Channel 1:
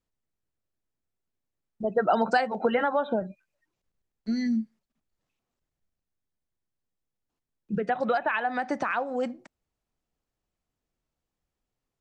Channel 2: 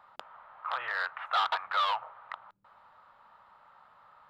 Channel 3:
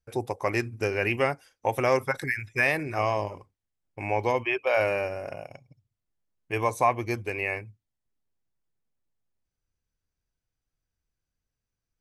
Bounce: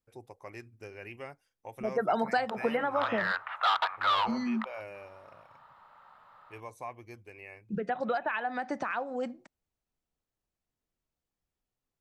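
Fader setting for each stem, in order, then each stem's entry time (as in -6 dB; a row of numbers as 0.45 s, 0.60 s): -5.0 dB, +1.5 dB, -18.5 dB; 0.00 s, 2.30 s, 0.00 s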